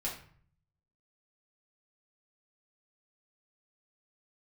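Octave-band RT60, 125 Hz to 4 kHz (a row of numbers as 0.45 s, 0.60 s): 1.0 s, 0.75 s, 0.50 s, 0.55 s, 0.50 s, 0.40 s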